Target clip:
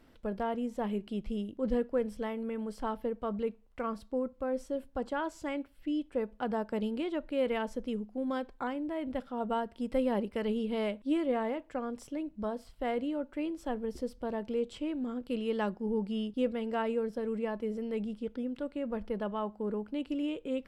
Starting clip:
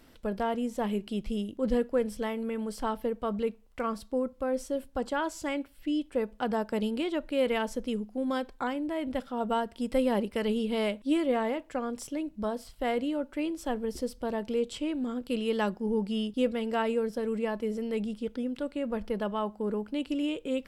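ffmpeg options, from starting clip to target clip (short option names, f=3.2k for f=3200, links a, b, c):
-af "highshelf=f=3.6k:g=-9.5,volume=-3dB"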